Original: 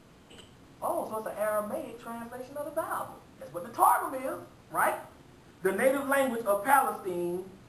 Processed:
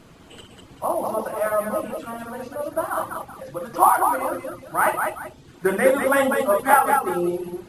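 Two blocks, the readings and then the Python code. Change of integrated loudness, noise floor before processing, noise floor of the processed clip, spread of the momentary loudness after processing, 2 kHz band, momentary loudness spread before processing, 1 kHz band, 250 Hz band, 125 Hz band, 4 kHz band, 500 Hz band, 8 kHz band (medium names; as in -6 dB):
+8.0 dB, -56 dBFS, -48 dBFS, 16 LU, +8.5 dB, 16 LU, +8.0 dB, +8.0 dB, +8.0 dB, +8.0 dB, +8.0 dB, +8.0 dB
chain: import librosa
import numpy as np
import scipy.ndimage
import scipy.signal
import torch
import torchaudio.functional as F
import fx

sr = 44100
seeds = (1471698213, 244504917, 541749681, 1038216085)

y = fx.echo_multitap(x, sr, ms=(63, 197, 242, 383), db=(-6.5, -4.0, -19.5, -13.5))
y = fx.dereverb_blind(y, sr, rt60_s=0.56)
y = F.gain(torch.from_numpy(y), 7.0).numpy()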